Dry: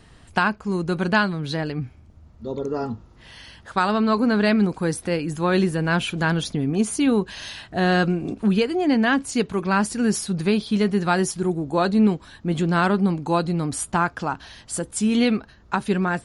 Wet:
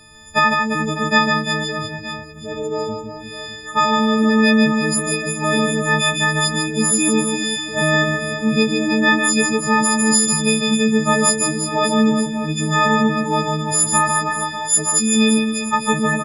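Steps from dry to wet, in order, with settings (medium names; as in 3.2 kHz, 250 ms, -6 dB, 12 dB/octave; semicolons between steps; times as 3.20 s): partials quantised in pitch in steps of 6 st; reverse bouncing-ball echo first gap 150 ms, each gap 1.3×, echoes 5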